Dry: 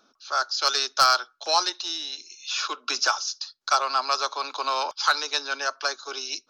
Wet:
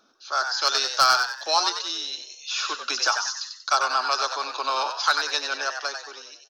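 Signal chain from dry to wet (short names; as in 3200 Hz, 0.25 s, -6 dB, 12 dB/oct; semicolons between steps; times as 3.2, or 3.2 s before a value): ending faded out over 0.91 s; frequency-shifting echo 94 ms, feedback 39%, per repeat +96 Hz, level -6.5 dB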